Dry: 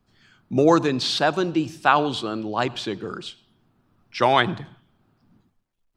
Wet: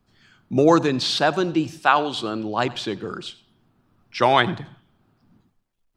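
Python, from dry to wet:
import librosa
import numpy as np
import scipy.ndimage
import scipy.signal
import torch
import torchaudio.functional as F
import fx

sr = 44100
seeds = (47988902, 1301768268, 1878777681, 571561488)

y = fx.low_shelf(x, sr, hz=240.0, db=-10.5, at=(1.79, 2.19))
y = y + 10.0 ** (-21.0 / 20.0) * np.pad(y, (int(91 * sr / 1000.0), 0))[:len(y)]
y = y * librosa.db_to_amplitude(1.0)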